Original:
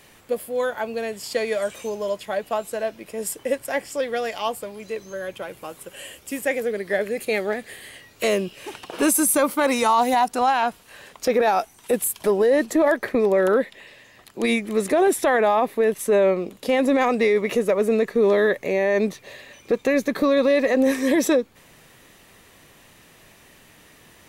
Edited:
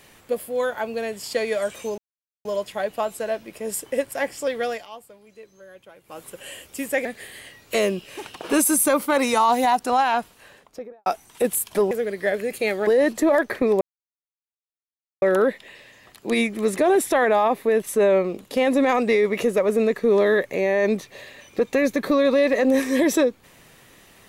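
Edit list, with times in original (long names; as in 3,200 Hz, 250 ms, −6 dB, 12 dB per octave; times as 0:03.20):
0:01.98: splice in silence 0.47 s
0:04.22–0:05.75: duck −14.5 dB, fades 0.18 s
0:06.58–0:07.54: move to 0:12.40
0:10.68–0:11.55: fade out and dull
0:13.34: splice in silence 1.41 s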